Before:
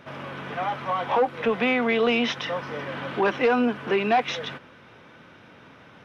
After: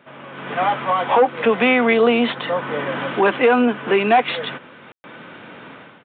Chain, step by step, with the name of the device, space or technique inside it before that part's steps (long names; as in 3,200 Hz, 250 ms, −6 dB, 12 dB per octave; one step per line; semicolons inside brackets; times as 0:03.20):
0:01.93–0:03.00: dynamic equaliser 2,600 Hz, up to −6 dB, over −39 dBFS, Q 0.99
call with lost packets (high-pass filter 160 Hz 12 dB per octave; downsampling to 8,000 Hz; automatic gain control gain up to 14.5 dB; dropped packets of 60 ms bursts)
level −3 dB